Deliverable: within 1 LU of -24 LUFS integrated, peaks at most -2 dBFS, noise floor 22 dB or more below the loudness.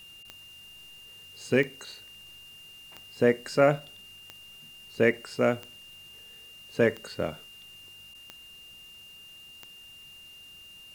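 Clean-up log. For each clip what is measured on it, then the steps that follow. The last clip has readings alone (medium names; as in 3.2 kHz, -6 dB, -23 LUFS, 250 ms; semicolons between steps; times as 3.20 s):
clicks found 8; steady tone 2.8 kHz; tone level -47 dBFS; loudness -27.0 LUFS; peak level -7.5 dBFS; loudness target -24.0 LUFS
-> de-click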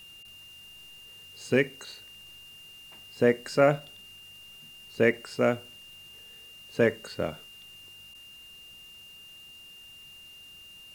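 clicks found 0; steady tone 2.8 kHz; tone level -47 dBFS
-> band-stop 2.8 kHz, Q 30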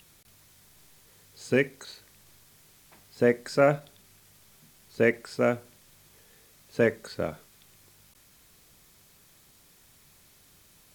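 steady tone not found; loudness -27.0 LUFS; peak level -8.0 dBFS; loudness target -24.0 LUFS
-> trim +3 dB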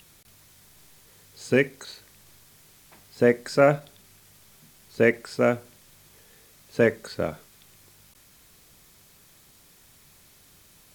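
loudness -24.0 LUFS; peak level -5.0 dBFS; noise floor -56 dBFS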